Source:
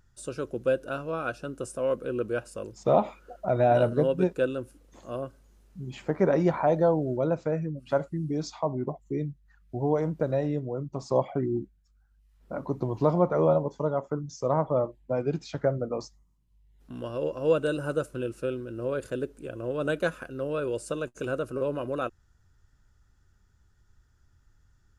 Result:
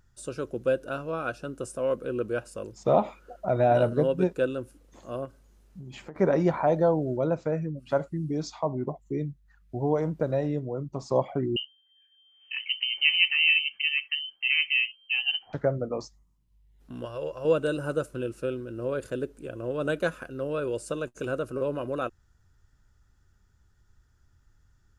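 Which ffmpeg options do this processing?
-filter_complex "[0:a]asettb=1/sr,asplit=3[a][b][c];[a]atrim=end=5.254[d];[b]atrim=start=5.25:end=6.16,asetpts=PTS-STARTPTS,afade=t=in:d=0.004:c=qsin,afade=t=out:st=0.906:d=0.004:c=qsin,acompressor=threshold=-38dB:ratio=6:attack=3.2:release=140:knee=1:detection=peak[e];[c]atrim=start=6.156[f];[d][e]acrossfade=d=0.004:c1=hsin:c2=qsin[g];[g][f]acrossfade=d=0.004:c1=qsin:c2=hsin,asettb=1/sr,asplit=3[h][i][j];[h]atrim=end=11.564[k];[i]atrim=start=11.56:end=15.53,asetpts=PTS-STARTPTS,afade=t=in:d=0.004:c=qsin,afade=t=out:st=3.966:d=0.004:c=qsin,lowpass=f=2.7k:t=q:w=0.5098,lowpass=f=2.7k:t=q:w=0.6013,lowpass=f=2.7k:t=q:w=0.9,lowpass=f=2.7k:t=q:w=2.563,afreqshift=-3200[l];[j]atrim=start=15.526[m];[k][l]acrossfade=d=0.004:c1=hsin:c2=qsin[n];[n][m]acrossfade=d=0.004:c1=qsin:c2=hsin,asettb=1/sr,asplit=3[o][p][q];[o]atrim=end=17.054[r];[p]atrim=start=17.05:end=17.45,asetpts=PTS-STARTPTS,afade=t=in:d=0.004:c=qsin,afade=t=out:st=0.396:d=0.004:c=qsin,equalizer=f=250:w=1.4:g=-14.5[s];[q]atrim=start=17.446[t];[r][s]acrossfade=d=0.004:c1=hsin:c2=qsin[u];[u][t]acrossfade=d=0.004:c1=qsin:c2=hsin"

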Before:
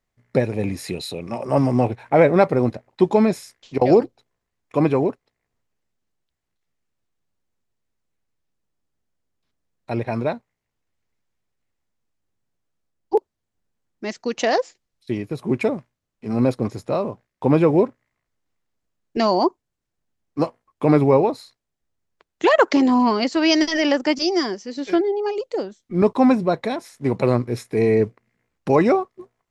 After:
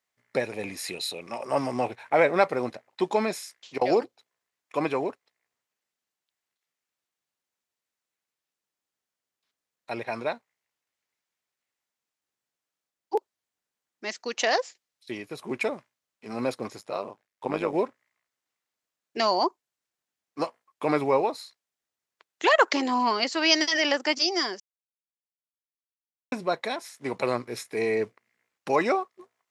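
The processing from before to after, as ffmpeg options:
-filter_complex "[0:a]asplit=3[a][b][c];[a]afade=t=out:st=16.77:d=0.02[d];[b]tremolo=f=100:d=0.824,afade=t=in:st=16.77:d=0.02,afade=t=out:st=17.73:d=0.02[e];[c]afade=t=in:st=17.73:d=0.02[f];[d][e][f]amix=inputs=3:normalize=0,asplit=3[g][h][i];[g]atrim=end=24.6,asetpts=PTS-STARTPTS,afade=t=out:st=24.596:d=0.004:c=hsin[j];[h]atrim=start=24.6:end=26.32,asetpts=PTS-STARTPTS,volume=0[k];[i]atrim=start=26.32,asetpts=PTS-STARTPTS,afade=t=in:d=0.004:c=hsin[l];[j][k][l]concat=n=3:v=0:a=1,highpass=f=1.2k:p=1,volume=1dB"

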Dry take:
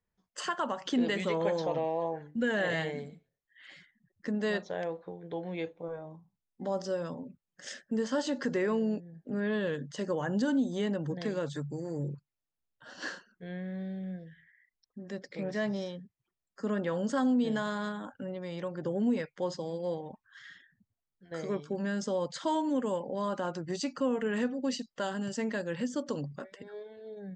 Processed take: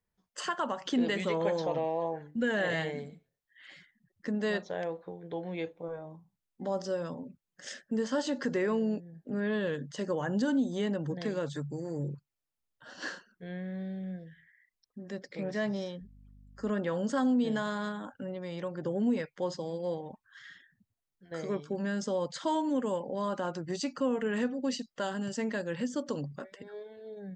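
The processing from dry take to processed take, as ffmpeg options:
-filter_complex "[0:a]asettb=1/sr,asplit=3[a][b][c];[a]atrim=end=16.014[d];[b]atrim=start=16.01:end=16.7,asetpts=PTS-STARTPTS,afade=t=in:d=0.004:c=qsin,afade=t=out:st=0.686:d=0.004:c=qsin,aeval=exprs='val(0)+0.002*(sin(2*PI*50*n/s)+sin(2*PI*2*50*n/s)/2+sin(2*PI*3*50*n/s)/3+sin(2*PI*4*50*n/s)/4+sin(2*PI*5*50*n/s)/5)':c=same[e];[c]atrim=start=16.696[f];[d][e]acrossfade=d=0.004:c1=hsin:c2=qsin[g];[g][f]acrossfade=d=0.004:c1=qsin:c2=hsin"

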